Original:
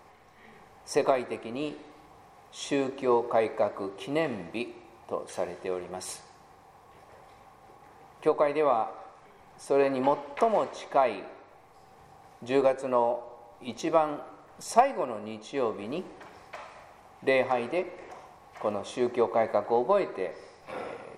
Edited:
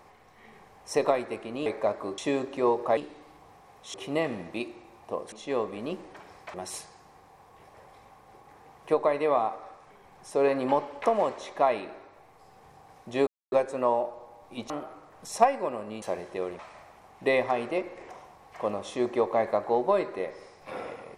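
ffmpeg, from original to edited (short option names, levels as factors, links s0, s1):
-filter_complex "[0:a]asplit=11[s0][s1][s2][s3][s4][s5][s6][s7][s8][s9][s10];[s0]atrim=end=1.662[s11];[s1]atrim=start=3.418:end=3.942[s12];[s2]atrim=start=2.628:end=3.422[s13];[s3]atrim=start=1.658:end=2.632[s14];[s4]atrim=start=3.938:end=5.322[s15];[s5]atrim=start=15.378:end=16.602[s16];[s6]atrim=start=5.888:end=12.62,asetpts=PTS-STARTPTS,afade=t=out:st=6.728:d=0.004:c=hsin,apad=pad_dur=0.25[s17];[s7]atrim=start=12.62:end=13.802,asetpts=PTS-STARTPTS,afade=t=in:d=0.004:c=hsin[s18];[s8]atrim=start=14.058:end=15.382[s19];[s9]atrim=start=5.318:end=5.892[s20];[s10]atrim=start=16.598[s21];[s11][s12]acrossfade=d=0.004:c1=hsin:c2=hsin[s22];[s22][s13]acrossfade=d=0.004:c1=hsin:c2=hsin[s23];[s23][s14]acrossfade=d=0.004:c1=hsin:c2=hsin[s24];[s24][s15]acrossfade=d=0.004:c1=hsin:c2=hsin[s25];[s25][s16]acrossfade=d=0.004:c1=hsin:c2=hsin[s26];[s17][s18]concat=n=2:v=0:a=1[s27];[s26][s27]acrossfade=d=0.004:c1=hsin:c2=hsin[s28];[s28][s19]acrossfade=d=0.004:c1=hsin:c2=hsin[s29];[s29][s20]acrossfade=d=0.004:c1=hsin:c2=hsin[s30];[s30][s21]acrossfade=d=0.004:c1=hsin:c2=hsin"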